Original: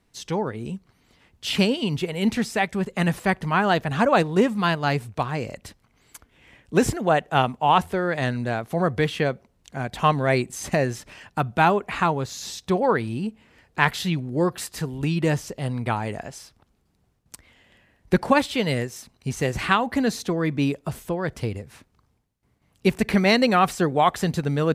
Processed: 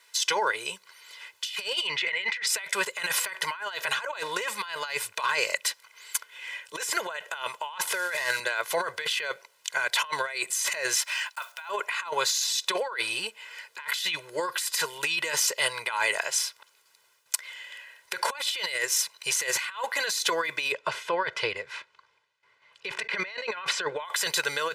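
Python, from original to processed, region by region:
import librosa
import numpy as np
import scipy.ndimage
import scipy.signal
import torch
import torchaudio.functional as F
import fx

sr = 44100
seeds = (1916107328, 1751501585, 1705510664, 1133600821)

y = fx.chain(x, sr, fx.lowpass(hz=3700.0, slope=12),
    fx.peak_eq(hz=2000.0, db=12.5, octaves=0.45), at=(1.87, 2.47))
y = fx.chain(y, sr, fx.cvsd(bps=64000),
    fx.band_squash(depth_pct=40), at=(7.87, 8.4))
y = fx.chain(y, sr, fx.block_float(bits=7),
    fx.highpass(hz=660.0, slope=24), at=(10.96, 11.69))
y = fx.chain(y, sr, fx.lowpass(hz=3300.0, slope=12),
    fx.low_shelf(hz=200.0, db=8.5), at=(20.72, 24.05))
y = scipy.signal.sosfilt(scipy.signal.butter(2, 1400.0, 'highpass', fs=sr, output='sos'), y)
y = y + 0.94 * np.pad(y, (int(2.0 * sr / 1000.0), 0))[:len(y)]
y = fx.over_compress(y, sr, threshold_db=-37.0, ratio=-1.0)
y = y * 10.0 ** (6.5 / 20.0)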